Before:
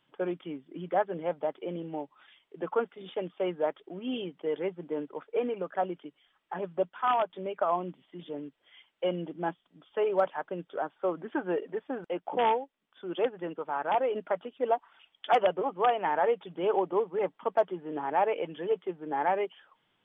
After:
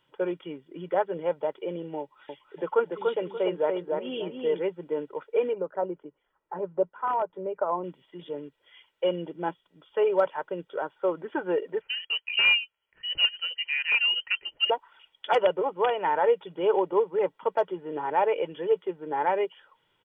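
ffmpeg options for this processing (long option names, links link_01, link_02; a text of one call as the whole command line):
ffmpeg -i in.wav -filter_complex "[0:a]asettb=1/sr,asplit=3[link_01][link_02][link_03];[link_01]atrim=end=2.004[link_04];[link_02]atrim=start=2:end=4.6,asetpts=PTS-STARTPTS,afade=type=in:duration=0.004:curve=qsin,afade=type=out:start_time=2.596:duration=0.004:curve=qsin,asplit=2[link_05][link_06];[link_06]adelay=290,lowpass=frequency=2000:poles=1,volume=-3dB,asplit=2[link_07][link_08];[link_08]adelay=290,lowpass=frequency=2000:poles=1,volume=0.3,asplit=2[link_09][link_10];[link_10]adelay=290,lowpass=frequency=2000:poles=1,volume=0.3,asplit=2[link_11][link_12];[link_12]adelay=290,lowpass=frequency=2000:poles=1,volume=0.3[link_13];[link_05][link_07][link_09][link_11][link_13]amix=inputs=5:normalize=0,atrim=end_sample=114660[link_14];[link_03]atrim=start=4.596[link_15];[link_04][link_14]acrossfade=duration=0.004:curve1=hsin:curve2=qsin[link_16];[link_16][link_15]acrossfade=duration=0.004:curve1=qsin:curve2=hsin,asettb=1/sr,asplit=3[link_17][link_18][link_19];[link_17]atrim=end=5.534[link_20];[link_18]atrim=start=5.53:end=7.84,asetpts=PTS-STARTPTS,afade=type=in:duration=0.004:curve=qsin,afade=type=out:start_time=2.306:duration=0.004:curve=qsin,lowpass=1100[link_21];[link_19]atrim=start=7.836[link_22];[link_20][link_21]acrossfade=duration=0.004:curve1=hsin:curve2=qsin[link_23];[link_23][link_22]acrossfade=duration=0.004:curve1=qsin:curve2=hsin,asettb=1/sr,asplit=3[link_24][link_25][link_26];[link_24]atrim=end=11.814[link_27];[link_25]atrim=start=11.81:end=14.7,asetpts=PTS-STARTPTS,afade=type=in:duration=0.004:curve=qsin,afade=type=out:start_time=2.886:duration=0.004:curve=qsin,lowpass=frequency=2800:width_type=q:width=0.5098,lowpass=frequency=2800:width_type=q:width=0.6013,lowpass=frequency=2800:width_type=q:width=0.9,lowpass=frequency=2800:width_type=q:width=2.563,afreqshift=-3300[link_28];[link_26]atrim=start=14.696[link_29];[link_27][link_28]acrossfade=duration=0.004:curve1=hsin:curve2=qsin[link_30];[link_30][link_29]acrossfade=duration=0.004:curve1=qsin:curve2=hsin,aecho=1:1:2.1:0.51,volume=1.5dB" out.wav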